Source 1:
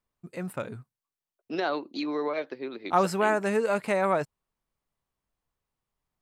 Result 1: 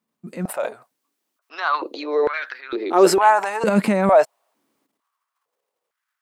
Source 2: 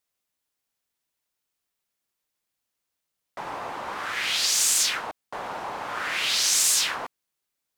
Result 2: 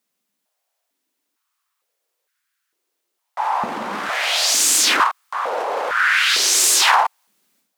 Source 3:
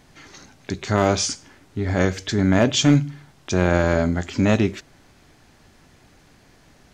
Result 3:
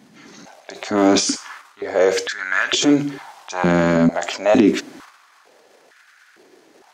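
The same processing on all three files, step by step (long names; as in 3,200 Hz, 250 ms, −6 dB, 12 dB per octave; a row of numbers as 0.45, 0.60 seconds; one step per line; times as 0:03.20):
transient designer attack −3 dB, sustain +11 dB
high-pass on a step sequencer 2.2 Hz 210–1,500 Hz
normalise the peak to −3 dBFS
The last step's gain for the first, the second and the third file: +3.5, +5.5, −0.5 decibels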